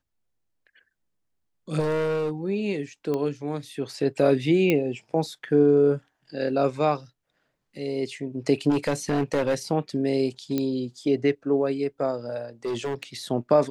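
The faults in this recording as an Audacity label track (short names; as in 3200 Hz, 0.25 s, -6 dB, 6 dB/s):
1.790000	2.310000	clipped -22.5 dBFS
3.140000	3.140000	pop -17 dBFS
4.700000	4.700000	pop -10 dBFS
8.690000	9.550000	clipped -18.5 dBFS
10.580000	10.580000	pop -13 dBFS
12.650000	13.030000	clipped -24.5 dBFS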